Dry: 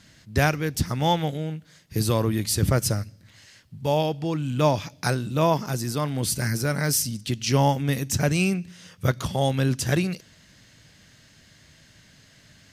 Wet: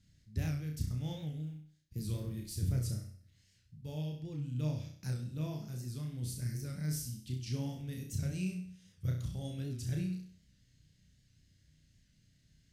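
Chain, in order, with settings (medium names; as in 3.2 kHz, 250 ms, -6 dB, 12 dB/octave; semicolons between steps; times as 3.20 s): 1.37–2.71 s: companding laws mixed up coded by A; amplifier tone stack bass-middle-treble 10-0-1; on a send: flutter echo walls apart 5.6 m, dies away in 0.51 s; on the sum: warped record 78 rpm, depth 100 cents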